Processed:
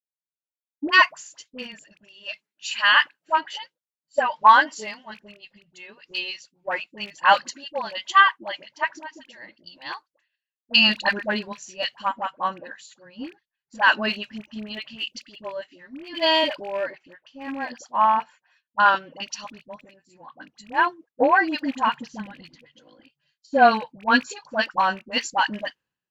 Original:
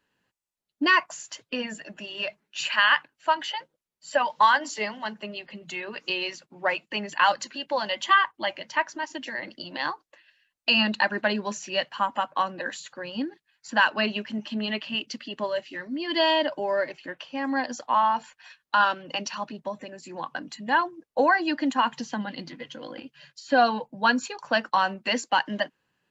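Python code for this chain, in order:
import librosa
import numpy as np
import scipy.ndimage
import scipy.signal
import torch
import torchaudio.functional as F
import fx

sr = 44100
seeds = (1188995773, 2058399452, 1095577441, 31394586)

y = fx.rattle_buzz(x, sr, strikes_db=-40.0, level_db=-25.0)
y = fx.dispersion(y, sr, late='highs', ms=64.0, hz=800.0)
y = fx.band_widen(y, sr, depth_pct=100)
y = F.gain(torch.from_numpy(y), -1.0).numpy()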